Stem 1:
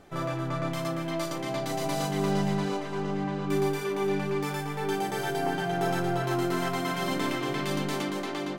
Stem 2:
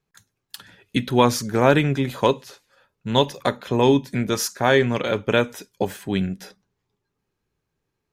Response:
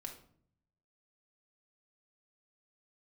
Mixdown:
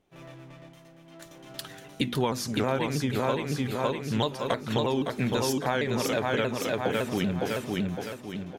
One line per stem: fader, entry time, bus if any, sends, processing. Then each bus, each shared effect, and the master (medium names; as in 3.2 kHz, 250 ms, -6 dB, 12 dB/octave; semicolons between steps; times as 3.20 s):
-13.5 dB, 0.00 s, muted 3.72–4.27 s, no send, no echo send, comb filter that takes the minimum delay 0.32 ms; tremolo triangle 0.83 Hz, depth 65%
0.0 dB, 1.05 s, no send, echo send -4.5 dB, hum notches 50/100/150/200/250/300/350/400 Hz; vibrato with a chosen wave saw down 6.3 Hz, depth 160 cents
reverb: none
echo: feedback delay 559 ms, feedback 40%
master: compression 10:1, threshold -23 dBFS, peak gain reduction 14 dB